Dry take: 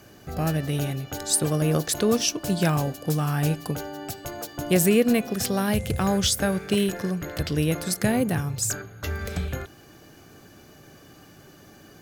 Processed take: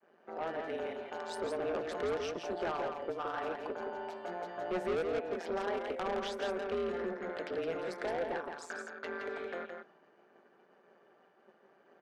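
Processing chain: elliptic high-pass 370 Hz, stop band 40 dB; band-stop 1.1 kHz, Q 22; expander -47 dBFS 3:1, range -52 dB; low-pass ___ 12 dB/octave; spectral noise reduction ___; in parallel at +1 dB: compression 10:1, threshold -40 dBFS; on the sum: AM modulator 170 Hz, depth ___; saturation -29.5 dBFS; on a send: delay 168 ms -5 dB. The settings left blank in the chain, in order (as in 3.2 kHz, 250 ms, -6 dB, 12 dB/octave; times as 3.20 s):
1.5 kHz, 6 dB, 85%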